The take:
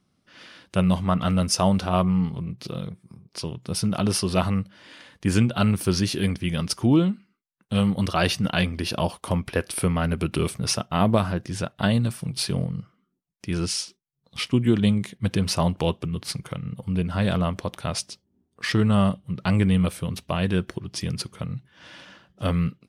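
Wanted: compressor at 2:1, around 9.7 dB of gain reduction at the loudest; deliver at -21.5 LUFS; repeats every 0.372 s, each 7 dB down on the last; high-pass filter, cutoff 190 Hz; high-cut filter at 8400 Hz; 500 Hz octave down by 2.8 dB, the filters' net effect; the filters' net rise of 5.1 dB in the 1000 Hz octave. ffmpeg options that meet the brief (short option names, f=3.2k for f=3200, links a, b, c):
-af "highpass=190,lowpass=8.4k,equalizer=f=500:t=o:g=-6.5,equalizer=f=1k:t=o:g=8.5,acompressor=threshold=-33dB:ratio=2,aecho=1:1:372|744|1116|1488|1860:0.447|0.201|0.0905|0.0407|0.0183,volume=11.5dB"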